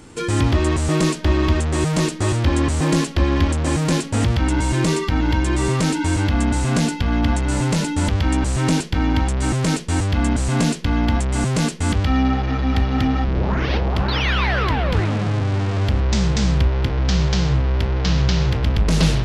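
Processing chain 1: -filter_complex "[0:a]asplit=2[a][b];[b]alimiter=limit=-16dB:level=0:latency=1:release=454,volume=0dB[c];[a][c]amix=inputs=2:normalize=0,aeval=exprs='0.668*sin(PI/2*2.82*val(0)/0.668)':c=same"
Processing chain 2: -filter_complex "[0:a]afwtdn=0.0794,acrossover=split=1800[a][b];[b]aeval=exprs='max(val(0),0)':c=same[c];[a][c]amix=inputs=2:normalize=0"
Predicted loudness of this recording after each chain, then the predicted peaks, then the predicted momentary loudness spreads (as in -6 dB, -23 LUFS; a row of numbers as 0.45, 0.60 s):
-8.0, -20.5 LUFS; -3.5, -7.0 dBFS; 2, 3 LU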